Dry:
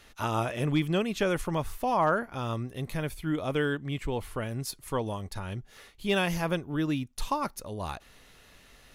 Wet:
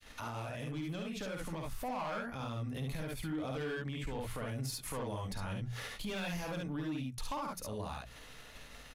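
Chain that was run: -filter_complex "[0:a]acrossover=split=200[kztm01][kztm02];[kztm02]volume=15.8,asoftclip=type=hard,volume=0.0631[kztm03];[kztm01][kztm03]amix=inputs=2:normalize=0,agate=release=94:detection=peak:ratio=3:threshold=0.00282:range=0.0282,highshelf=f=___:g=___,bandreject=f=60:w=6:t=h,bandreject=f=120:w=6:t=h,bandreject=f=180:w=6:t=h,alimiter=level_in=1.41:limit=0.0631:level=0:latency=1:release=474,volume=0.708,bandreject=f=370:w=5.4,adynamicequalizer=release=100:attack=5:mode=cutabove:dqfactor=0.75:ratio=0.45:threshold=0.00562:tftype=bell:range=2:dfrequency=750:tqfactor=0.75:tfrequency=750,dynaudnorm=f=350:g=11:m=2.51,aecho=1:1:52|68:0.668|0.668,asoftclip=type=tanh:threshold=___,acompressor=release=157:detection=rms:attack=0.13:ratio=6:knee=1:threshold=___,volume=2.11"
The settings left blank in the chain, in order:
9800, -4.5, 0.126, 0.00794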